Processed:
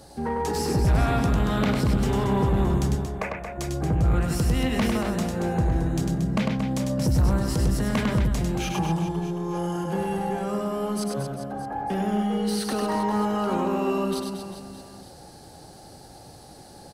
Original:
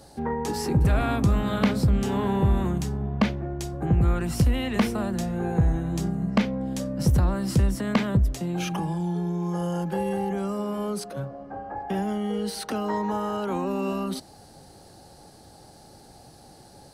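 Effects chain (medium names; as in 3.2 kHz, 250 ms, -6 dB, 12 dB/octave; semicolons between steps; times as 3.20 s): 2.96–3.58 s: Chebyshev band-pass 440–2600 Hz, order 5; saturation -20 dBFS, distortion -12 dB; reverse bouncing-ball echo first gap 100 ms, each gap 1.3×, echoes 5; trim +1.5 dB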